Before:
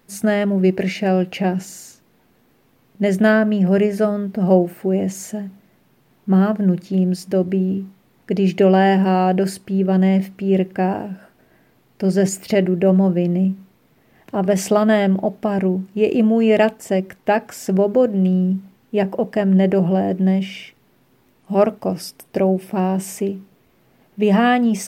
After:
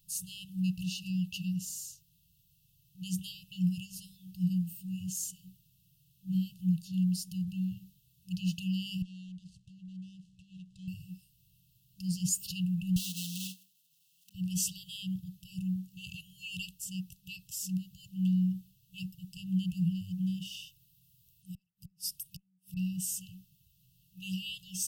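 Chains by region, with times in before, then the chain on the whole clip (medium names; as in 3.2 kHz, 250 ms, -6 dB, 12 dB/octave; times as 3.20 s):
9.02–10.88 s: median filter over 25 samples + low-pass 8.7 kHz 24 dB/octave + compression 2.5:1, threshold -36 dBFS
12.96–14.35 s: block-companded coder 3-bit + high-pass 250 Hz 24 dB/octave + treble shelf 6.9 kHz -5 dB
20.45–22.77 s: treble shelf 10 kHz +4.5 dB + inverted gate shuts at -14 dBFS, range -38 dB
whole clip: amplifier tone stack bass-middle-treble 6-0-2; FFT band-reject 190–2600 Hz; treble shelf 7.2 kHz +6 dB; trim +8 dB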